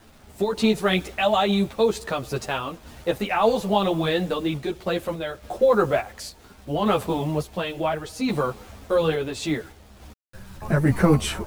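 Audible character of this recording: a quantiser's noise floor 8-bit, dither none; random-step tremolo; a shimmering, thickened sound

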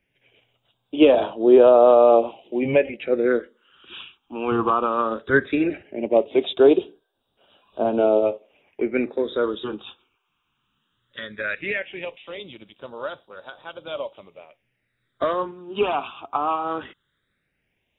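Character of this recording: phasing stages 8, 0.17 Hz, lowest notch 570–2100 Hz

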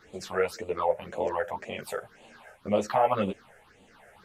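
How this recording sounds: phasing stages 6, 1.9 Hz, lowest notch 270–1500 Hz; tremolo triangle 1 Hz, depth 30%; a shimmering, thickened sound

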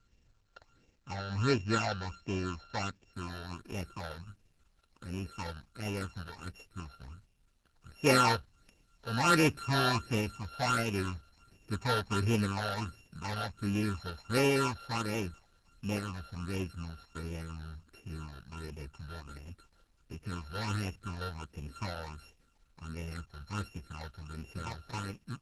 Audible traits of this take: a buzz of ramps at a fixed pitch in blocks of 32 samples; phasing stages 8, 1.4 Hz, lowest notch 300–1300 Hz; a quantiser's noise floor 12-bit, dither none; Opus

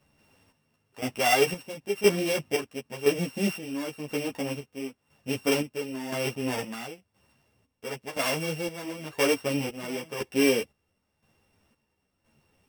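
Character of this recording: a buzz of ramps at a fixed pitch in blocks of 16 samples; chopped level 0.98 Hz, depth 65%, duty 50%; a shimmering, thickened sound

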